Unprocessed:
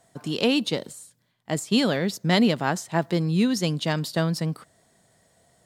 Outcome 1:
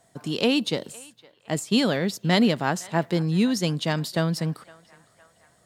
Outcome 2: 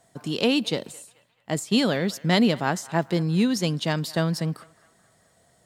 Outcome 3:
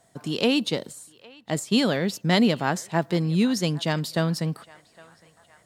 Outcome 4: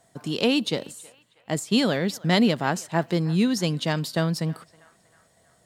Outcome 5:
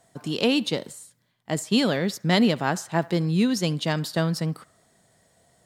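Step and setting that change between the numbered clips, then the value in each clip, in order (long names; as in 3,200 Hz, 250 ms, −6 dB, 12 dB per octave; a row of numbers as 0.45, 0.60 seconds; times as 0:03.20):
feedback echo with a band-pass in the loop, delay time: 511, 216, 810, 319, 70 milliseconds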